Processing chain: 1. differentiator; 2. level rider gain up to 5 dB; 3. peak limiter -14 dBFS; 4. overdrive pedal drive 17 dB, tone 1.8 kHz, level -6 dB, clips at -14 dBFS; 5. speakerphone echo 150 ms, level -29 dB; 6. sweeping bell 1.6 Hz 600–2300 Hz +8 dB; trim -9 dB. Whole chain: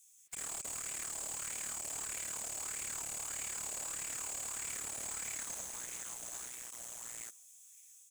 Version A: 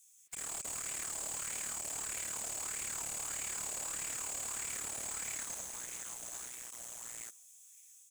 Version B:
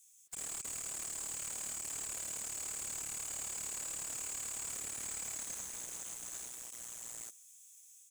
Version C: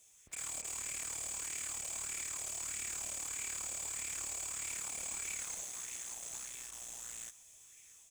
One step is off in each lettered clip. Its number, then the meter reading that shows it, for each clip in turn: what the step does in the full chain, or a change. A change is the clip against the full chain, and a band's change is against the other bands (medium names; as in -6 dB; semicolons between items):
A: 3, mean gain reduction 1.5 dB; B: 6, 2 kHz band -3.0 dB; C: 1, 500 Hz band -3.0 dB